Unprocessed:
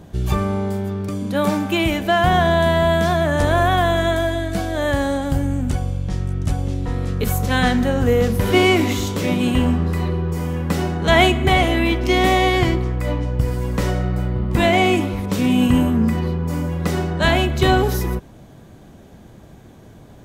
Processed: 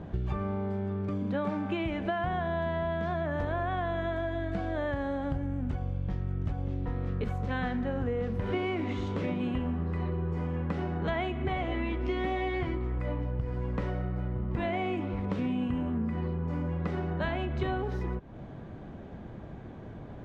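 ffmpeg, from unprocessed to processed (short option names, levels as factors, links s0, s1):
-filter_complex "[0:a]asettb=1/sr,asplit=3[s0][s1][s2];[s0]atrim=end=11.704[s3];[s1]atrim=start=11.7:end=12.99,asetpts=PTS-STARTPTS,afade=t=in:d=0.004:c=qsin,afade=t=out:st=1.286:d=0.004:c=qsin,asplit=2[s4][s5];[s5]adelay=13,volume=0.531[s6];[s4][s6]amix=inputs=2:normalize=0,atrim=end_sample=56889[s7];[s2]atrim=start=12.986[s8];[s3][s7]acrossfade=d=0.004:c1=hsin:c2=qsin[s9];[s9][s8]acrossfade=d=0.004:c1=qsin:c2=hsin,acompressor=threshold=0.0355:ratio=6,lowpass=2200"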